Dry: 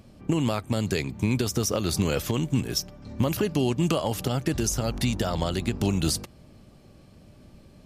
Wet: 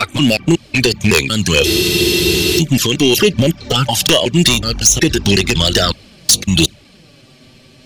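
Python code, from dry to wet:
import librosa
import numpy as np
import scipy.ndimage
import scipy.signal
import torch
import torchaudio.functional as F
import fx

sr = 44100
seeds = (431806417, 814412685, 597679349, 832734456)

p1 = fx.block_reorder(x, sr, ms=185.0, group=4)
p2 = fx.weighting(p1, sr, curve='D')
p3 = fx.env_flanger(p2, sr, rest_ms=8.7, full_db=-19.5)
p4 = fx.low_shelf(p3, sr, hz=69.0, db=11.5)
p5 = fx.rider(p4, sr, range_db=4, speed_s=0.5)
p6 = p4 + (p5 * 10.0 ** (2.5 / 20.0))
p7 = fx.fold_sine(p6, sr, drive_db=11, ceiling_db=1.5)
p8 = fx.noise_reduce_blind(p7, sr, reduce_db=6)
p9 = fx.spec_freeze(p8, sr, seeds[0], at_s=1.68, hold_s=0.9)
y = p9 * 10.0 ** (-5.0 / 20.0)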